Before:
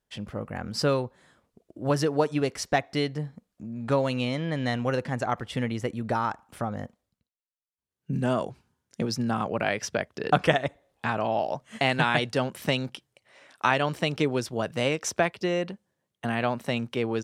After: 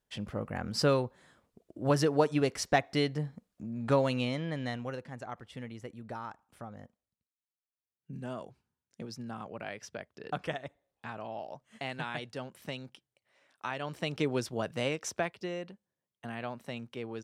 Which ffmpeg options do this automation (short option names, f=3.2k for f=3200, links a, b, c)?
-af "volume=8dB,afade=t=out:st=3.98:d=1.04:silence=0.251189,afade=t=in:st=13.74:d=0.64:silence=0.316228,afade=t=out:st=14.38:d=1.28:silence=0.398107"